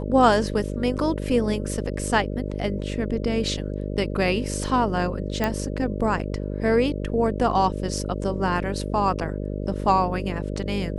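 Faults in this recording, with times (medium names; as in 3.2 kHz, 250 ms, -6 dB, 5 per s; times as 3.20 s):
buzz 50 Hz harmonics 12 -29 dBFS
5.44 s: pop -10 dBFS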